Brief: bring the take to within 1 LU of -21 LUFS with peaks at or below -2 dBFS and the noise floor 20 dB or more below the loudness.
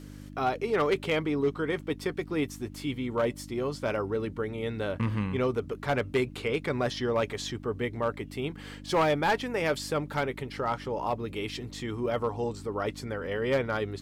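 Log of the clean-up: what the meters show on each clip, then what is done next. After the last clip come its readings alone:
clipped samples 0.7%; clipping level -19.5 dBFS; hum 50 Hz; highest harmonic 300 Hz; hum level -43 dBFS; loudness -30.5 LUFS; peak level -19.5 dBFS; loudness target -21.0 LUFS
-> clip repair -19.5 dBFS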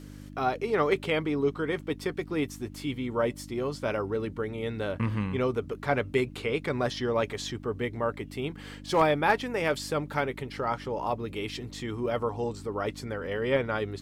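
clipped samples 0.0%; hum 50 Hz; highest harmonic 300 Hz; hum level -43 dBFS
-> de-hum 50 Hz, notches 6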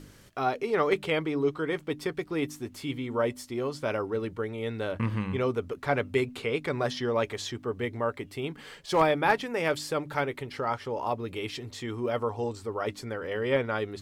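hum not found; loudness -30.5 LUFS; peak level -10.5 dBFS; loudness target -21.0 LUFS
-> trim +9.5 dB; peak limiter -2 dBFS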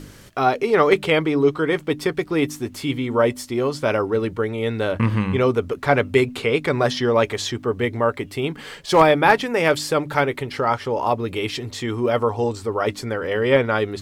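loudness -21.0 LUFS; peak level -2.0 dBFS; noise floor -42 dBFS

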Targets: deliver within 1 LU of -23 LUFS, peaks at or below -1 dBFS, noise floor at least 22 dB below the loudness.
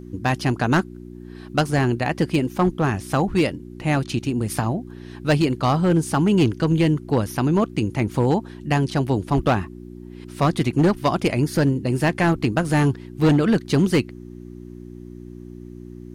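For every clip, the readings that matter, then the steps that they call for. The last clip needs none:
clipped samples 1.2%; clipping level -11.5 dBFS; hum 60 Hz; highest harmonic 360 Hz; hum level -37 dBFS; loudness -21.0 LUFS; peak level -11.5 dBFS; loudness target -23.0 LUFS
-> clip repair -11.5 dBFS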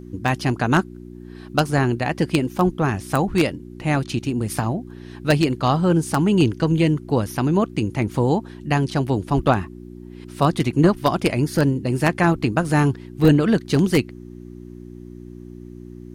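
clipped samples 0.0%; hum 60 Hz; highest harmonic 360 Hz; hum level -37 dBFS
-> de-hum 60 Hz, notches 6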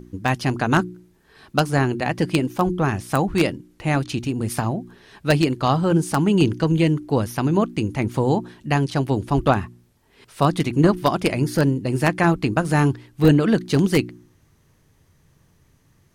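hum not found; loudness -21.0 LUFS; peak level -2.0 dBFS; loudness target -23.0 LUFS
-> trim -2 dB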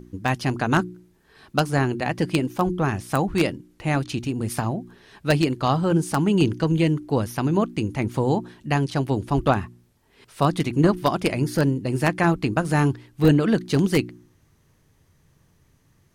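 loudness -23.0 LUFS; peak level -4.0 dBFS; noise floor -62 dBFS

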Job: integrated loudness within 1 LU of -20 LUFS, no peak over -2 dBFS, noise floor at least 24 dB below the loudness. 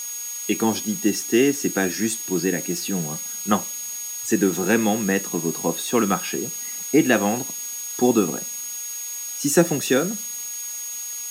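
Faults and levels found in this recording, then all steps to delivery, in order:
steady tone 6.6 kHz; tone level -30 dBFS; noise floor -32 dBFS; noise floor target -47 dBFS; loudness -22.5 LUFS; peak level -3.0 dBFS; loudness target -20.0 LUFS
-> band-stop 6.6 kHz, Q 30; noise print and reduce 15 dB; trim +2.5 dB; peak limiter -2 dBFS

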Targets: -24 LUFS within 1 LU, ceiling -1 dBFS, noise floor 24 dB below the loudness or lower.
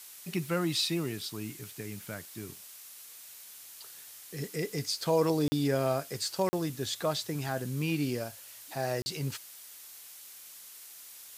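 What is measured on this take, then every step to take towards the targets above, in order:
dropouts 3; longest dropout 40 ms; noise floor -50 dBFS; noise floor target -57 dBFS; loudness -32.5 LUFS; peak level -14.5 dBFS; loudness target -24.0 LUFS
-> interpolate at 5.48/6.49/9.02 s, 40 ms; noise print and reduce 7 dB; trim +8.5 dB

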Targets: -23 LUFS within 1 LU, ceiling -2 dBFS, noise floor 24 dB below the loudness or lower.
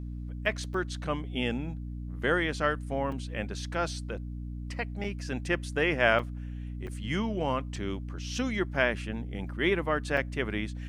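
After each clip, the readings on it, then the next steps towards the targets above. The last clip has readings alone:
dropouts 7; longest dropout 3.4 ms; hum 60 Hz; highest harmonic 300 Hz; hum level -35 dBFS; loudness -31.0 LUFS; peak level -8.5 dBFS; loudness target -23.0 LUFS
-> interpolate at 0.74/3.12/5.04/6.19/6.87/7.76/10.17 s, 3.4 ms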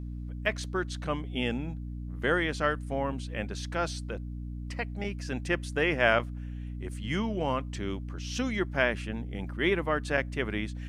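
dropouts 0; hum 60 Hz; highest harmonic 300 Hz; hum level -35 dBFS
-> hum notches 60/120/180/240/300 Hz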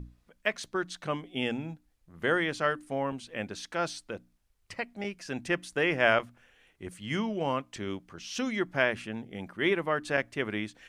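hum not found; loudness -31.5 LUFS; peak level -8.5 dBFS; loudness target -23.0 LUFS
-> trim +8.5 dB; peak limiter -2 dBFS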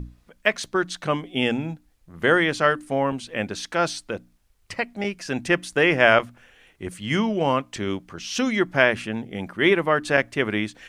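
loudness -23.0 LUFS; peak level -2.0 dBFS; noise floor -61 dBFS

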